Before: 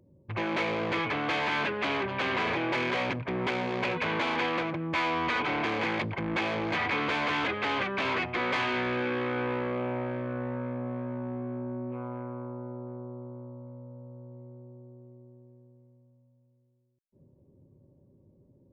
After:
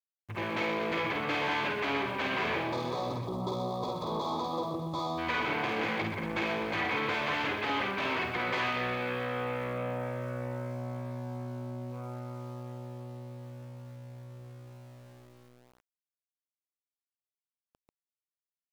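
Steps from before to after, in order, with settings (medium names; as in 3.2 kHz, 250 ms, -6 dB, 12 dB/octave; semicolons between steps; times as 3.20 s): time-frequency box 2.62–5.18 s, 1.3–3.3 kHz -27 dB; reverse bouncing-ball echo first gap 50 ms, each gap 1.5×, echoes 5; small samples zeroed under -47.5 dBFS; trim -4 dB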